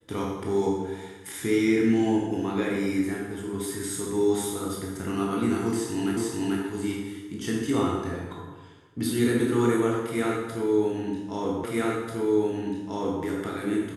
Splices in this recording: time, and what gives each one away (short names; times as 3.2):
6.17 repeat of the last 0.44 s
11.64 repeat of the last 1.59 s